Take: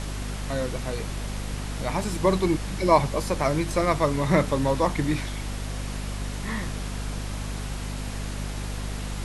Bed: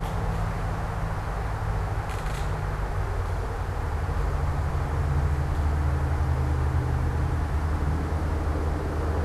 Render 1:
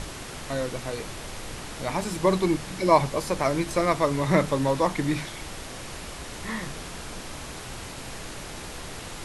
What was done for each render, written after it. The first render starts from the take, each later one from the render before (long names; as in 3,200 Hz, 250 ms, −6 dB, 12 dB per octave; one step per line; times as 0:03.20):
mains-hum notches 50/100/150/200/250 Hz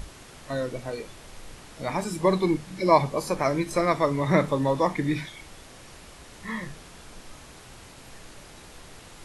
noise reduction from a noise print 9 dB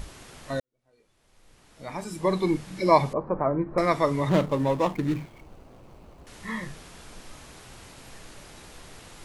0:00.60–0:02.58: fade in quadratic
0:03.13–0:03.78: low-pass filter 1,300 Hz 24 dB per octave
0:04.29–0:06.27: running median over 25 samples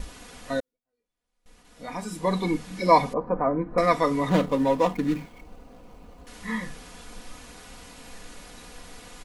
noise gate with hold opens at −47 dBFS
comb filter 4.1 ms, depth 67%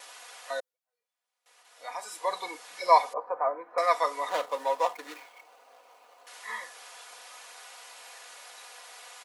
high-pass filter 620 Hz 24 dB per octave
dynamic equaliser 2,400 Hz, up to −4 dB, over −44 dBFS, Q 0.92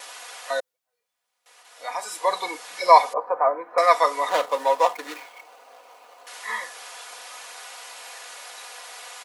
level +7.5 dB
brickwall limiter −1 dBFS, peak gain reduction 2 dB